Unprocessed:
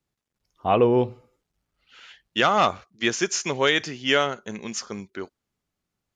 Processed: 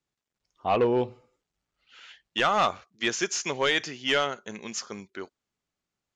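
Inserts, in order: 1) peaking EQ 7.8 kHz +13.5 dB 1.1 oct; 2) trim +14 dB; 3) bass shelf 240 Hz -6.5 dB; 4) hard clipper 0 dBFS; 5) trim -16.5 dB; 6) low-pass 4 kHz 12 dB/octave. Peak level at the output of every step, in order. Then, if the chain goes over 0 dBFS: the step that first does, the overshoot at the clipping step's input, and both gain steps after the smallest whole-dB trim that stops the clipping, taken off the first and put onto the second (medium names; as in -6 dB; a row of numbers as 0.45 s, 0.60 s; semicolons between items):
-4.0 dBFS, +10.0 dBFS, +10.0 dBFS, 0.0 dBFS, -16.5 dBFS, -15.5 dBFS; step 2, 10.0 dB; step 2 +4 dB, step 5 -6.5 dB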